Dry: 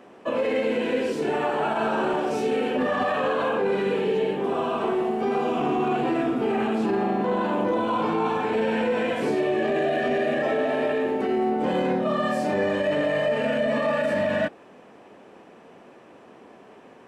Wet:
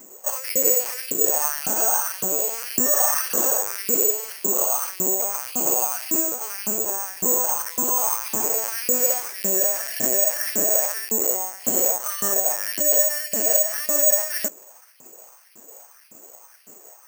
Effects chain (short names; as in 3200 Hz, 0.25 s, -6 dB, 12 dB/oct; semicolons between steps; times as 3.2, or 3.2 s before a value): LPC vocoder at 8 kHz pitch kept; LFO high-pass saw up 1.8 Hz 210–2700 Hz; careless resampling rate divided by 6×, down none, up zero stuff; gain -5.5 dB